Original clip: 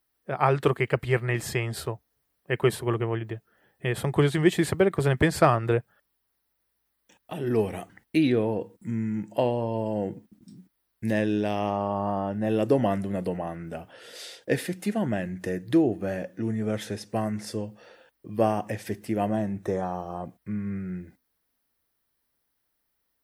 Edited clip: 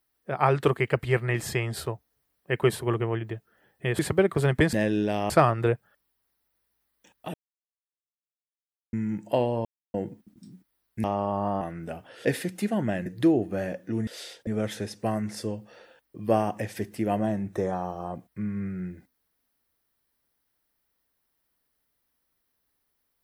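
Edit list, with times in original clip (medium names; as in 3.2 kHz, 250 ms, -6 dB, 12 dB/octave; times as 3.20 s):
3.99–4.61 s: delete
7.39–8.98 s: mute
9.70–9.99 s: mute
11.09–11.66 s: move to 5.35 s
12.23–13.45 s: delete
14.09–14.49 s: move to 16.57 s
15.30–15.56 s: delete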